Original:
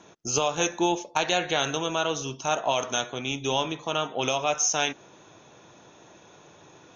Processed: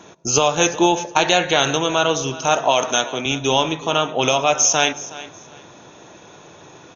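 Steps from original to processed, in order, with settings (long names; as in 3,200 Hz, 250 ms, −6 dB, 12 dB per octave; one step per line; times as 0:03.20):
0:02.60–0:03.26: high-pass filter 160 Hz
repeating echo 369 ms, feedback 23%, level −17 dB
on a send at −20.5 dB: convolution reverb RT60 0.55 s, pre-delay 92 ms
on the sum: downsampling to 16,000 Hz
level +8.5 dB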